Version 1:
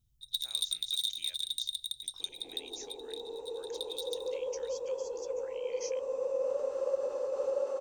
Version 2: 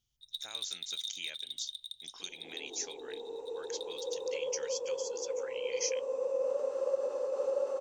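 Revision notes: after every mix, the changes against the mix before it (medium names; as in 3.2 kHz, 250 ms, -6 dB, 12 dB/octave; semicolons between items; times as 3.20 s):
speech +9.0 dB; first sound: add tone controls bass -13 dB, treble -14 dB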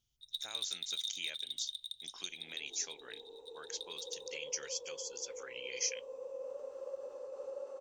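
second sound -11.5 dB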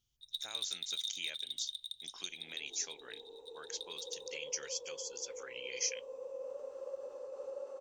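no change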